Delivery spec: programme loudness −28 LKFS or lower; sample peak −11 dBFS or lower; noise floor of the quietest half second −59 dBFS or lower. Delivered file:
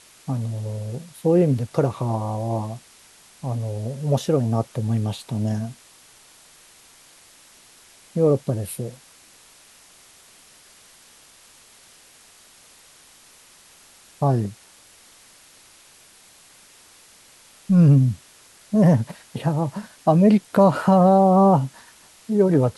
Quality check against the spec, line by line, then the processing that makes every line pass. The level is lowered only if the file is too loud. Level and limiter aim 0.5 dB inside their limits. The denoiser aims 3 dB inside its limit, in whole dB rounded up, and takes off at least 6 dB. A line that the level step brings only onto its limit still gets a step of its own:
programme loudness −21.0 LKFS: out of spec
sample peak −5.5 dBFS: out of spec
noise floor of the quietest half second −51 dBFS: out of spec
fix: broadband denoise 6 dB, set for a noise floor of −51 dBFS
level −7.5 dB

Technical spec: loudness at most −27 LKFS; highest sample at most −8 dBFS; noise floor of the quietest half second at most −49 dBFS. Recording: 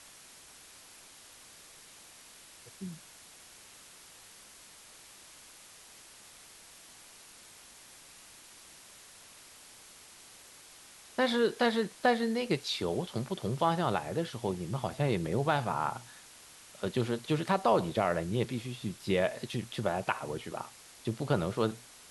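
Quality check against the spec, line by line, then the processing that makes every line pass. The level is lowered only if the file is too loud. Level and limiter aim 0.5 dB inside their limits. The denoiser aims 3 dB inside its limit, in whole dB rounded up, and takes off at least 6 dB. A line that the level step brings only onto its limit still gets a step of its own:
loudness −32.0 LKFS: in spec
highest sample −13.5 dBFS: in spec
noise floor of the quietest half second −54 dBFS: in spec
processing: no processing needed

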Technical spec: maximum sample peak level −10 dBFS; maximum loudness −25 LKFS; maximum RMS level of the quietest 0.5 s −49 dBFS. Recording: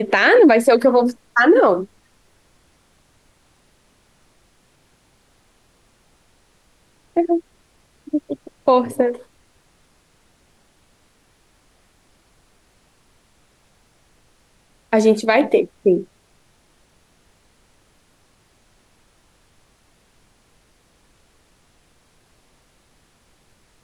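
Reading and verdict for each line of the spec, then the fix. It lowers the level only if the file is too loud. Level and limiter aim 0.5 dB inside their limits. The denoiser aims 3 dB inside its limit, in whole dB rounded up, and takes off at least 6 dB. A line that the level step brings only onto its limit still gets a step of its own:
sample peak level −4.0 dBFS: out of spec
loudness −16.5 LKFS: out of spec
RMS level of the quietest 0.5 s −58 dBFS: in spec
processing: level −9 dB

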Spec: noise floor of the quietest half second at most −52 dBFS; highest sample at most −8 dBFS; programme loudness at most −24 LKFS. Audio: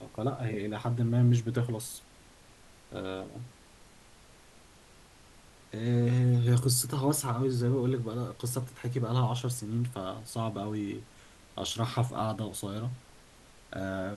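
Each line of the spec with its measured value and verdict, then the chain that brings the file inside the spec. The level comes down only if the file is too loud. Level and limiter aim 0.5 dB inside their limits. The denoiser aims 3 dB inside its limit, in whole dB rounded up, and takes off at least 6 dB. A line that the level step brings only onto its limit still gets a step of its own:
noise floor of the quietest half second −56 dBFS: in spec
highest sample −14.0 dBFS: in spec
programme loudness −31.0 LKFS: in spec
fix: no processing needed

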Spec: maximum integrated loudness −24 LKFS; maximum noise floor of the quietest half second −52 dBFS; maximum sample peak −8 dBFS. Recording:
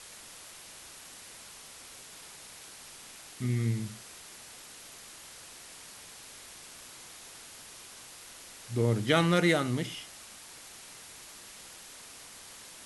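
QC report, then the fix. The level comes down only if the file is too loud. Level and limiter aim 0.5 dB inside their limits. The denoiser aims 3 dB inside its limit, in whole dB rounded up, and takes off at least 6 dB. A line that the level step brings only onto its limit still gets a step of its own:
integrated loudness −29.5 LKFS: in spec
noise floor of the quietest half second −49 dBFS: out of spec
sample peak −10.0 dBFS: in spec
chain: broadband denoise 6 dB, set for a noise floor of −49 dBFS

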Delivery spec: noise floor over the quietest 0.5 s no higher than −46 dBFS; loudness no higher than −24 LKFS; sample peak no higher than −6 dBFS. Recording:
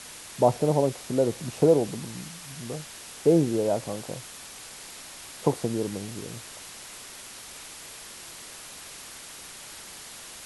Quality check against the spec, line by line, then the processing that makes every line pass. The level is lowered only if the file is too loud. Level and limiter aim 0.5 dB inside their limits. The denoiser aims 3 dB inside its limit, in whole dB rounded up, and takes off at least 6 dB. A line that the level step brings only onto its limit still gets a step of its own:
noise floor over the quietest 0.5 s −43 dBFS: out of spec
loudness −27.0 LKFS: in spec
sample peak −6.5 dBFS: in spec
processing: broadband denoise 6 dB, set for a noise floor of −43 dBFS

